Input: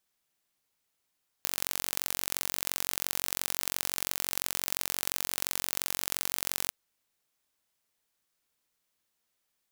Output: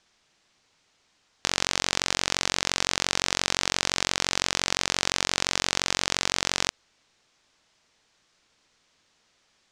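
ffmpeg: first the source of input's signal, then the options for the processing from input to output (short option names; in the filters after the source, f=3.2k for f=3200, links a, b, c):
-f lavfi -i "aevalsrc='0.794*eq(mod(n,963),0)*(0.5+0.5*eq(mod(n,1926),0))':d=5.25:s=44100"
-af "lowpass=f=6.5k:w=0.5412,lowpass=f=6.5k:w=1.3066,alimiter=level_in=17dB:limit=-1dB:release=50:level=0:latency=1"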